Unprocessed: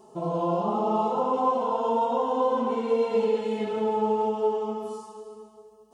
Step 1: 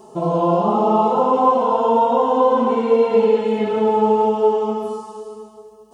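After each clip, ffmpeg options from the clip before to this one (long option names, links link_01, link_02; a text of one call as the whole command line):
ffmpeg -i in.wav -filter_complex "[0:a]acrossover=split=3200[link_01][link_02];[link_02]acompressor=threshold=-58dB:ratio=4:attack=1:release=60[link_03];[link_01][link_03]amix=inputs=2:normalize=0,volume=9dB" out.wav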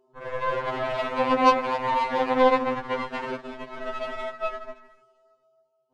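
ffmpeg -i in.wav -af "adynamicsmooth=sensitivity=5:basefreq=3100,aeval=exprs='0.631*(cos(1*acos(clip(val(0)/0.631,-1,1)))-cos(1*PI/2))+0.0501*(cos(3*acos(clip(val(0)/0.631,-1,1)))-cos(3*PI/2))+0.0891*(cos(7*acos(clip(val(0)/0.631,-1,1)))-cos(7*PI/2))':channel_layout=same,afftfilt=real='re*2.45*eq(mod(b,6),0)':imag='im*2.45*eq(mod(b,6),0)':win_size=2048:overlap=0.75,volume=-5.5dB" out.wav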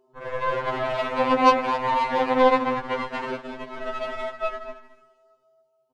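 ffmpeg -i in.wav -af "aecho=1:1:211:0.158,volume=1.5dB" out.wav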